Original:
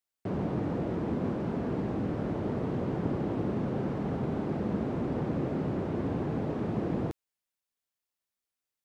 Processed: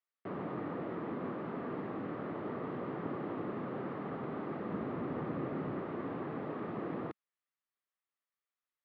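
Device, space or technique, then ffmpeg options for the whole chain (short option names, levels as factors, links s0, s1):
kitchen radio: -filter_complex "[0:a]asettb=1/sr,asplit=3[s0][s1][s2];[s0]atrim=end=4.704[s3];[s1]atrim=start=4.7:end=5.79,asetpts=PTS-STARTPTS,afade=t=in:d=0.004:c=qsin,afade=t=out:st=1.086:d=0.004:c=qsin,lowshelf=f=130:g=8.5[s4];[s2]atrim=start=5.786[s5];[s3][s4]acrossfade=d=0.004:c1=hsin:c2=qsin[s6];[s6][s5]acrossfade=d=0.004:c1=qsin:c2=hsin,highpass=190,equalizer=f=210:t=q:w=4:g=-3,equalizer=f=1200:t=q:w=4:g=10,equalizer=f=1900:t=q:w=4:g=6,lowpass=f=3700:w=0.5412,lowpass=f=3700:w=1.3066,volume=0.501"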